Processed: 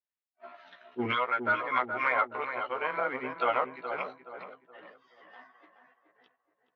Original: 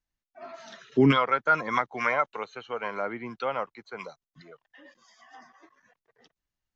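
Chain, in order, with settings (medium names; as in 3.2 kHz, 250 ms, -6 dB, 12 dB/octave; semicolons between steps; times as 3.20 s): short-time spectra conjugated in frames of 32 ms; waveshaping leveller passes 1; high-pass 600 Hz 6 dB/octave; filtered feedback delay 423 ms, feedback 39%, low-pass 1.5 kHz, level -7.5 dB; gain riding within 4 dB 2 s; low-pass 3.3 kHz 24 dB/octave; attacks held to a fixed rise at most 540 dB/s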